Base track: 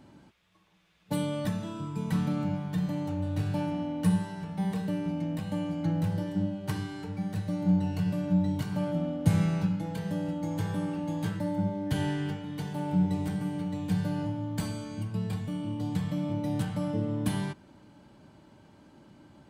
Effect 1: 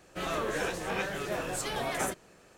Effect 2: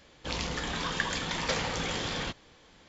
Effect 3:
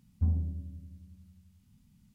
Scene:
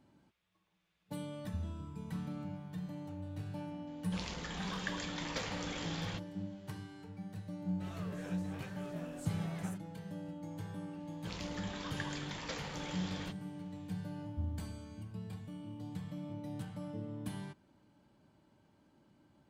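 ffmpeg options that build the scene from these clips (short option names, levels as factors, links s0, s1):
-filter_complex "[3:a]asplit=2[s0][s1];[2:a]asplit=2[s2][s3];[0:a]volume=0.237[s4];[s0]atrim=end=2.14,asetpts=PTS-STARTPTS,volume=0.237,afade=t=in:d=0.004:c=hsin,afade=t=out:st=2.136:d=0.004:c=hsin,adelay=1320[s5];[s2]atrim=end=2.88,asetpts=PTS-STARTPTS,volume=0.335,afade=t=in:d=0.004:c=hsin,afade=t=out:st=2.876:d=0.004:c=hsin,adelay=3870[s6];[1:a]atrim=end=2.57,asetpts=PTS-STARTPTS,volume=0.126,afade=t=in:d=0.004:c=hsin,afade=t=out:st=2.566:d=0.004:c=hsin,adelay=7640[s7];[s3]atrim=end=2.88,asetpts=PTS-STARTPTS,volume=0.251,afade=t=in:d=0.004:c=hsin,afade=t=out:st=2.876:d=0.004:c=hsin,adelay=11000[s8];[s1]atrim=end=2.14,asetpts=PTS-STARTPTS,volume=0.299,afade=t=in:d=0.004:c=hsin,afade=t=out:st=2.136:d=0.004:c=hsin,adelay=14160[s9];[s4][s5][s6][s7][s8][s9]amix=inputs=6:normalize=0"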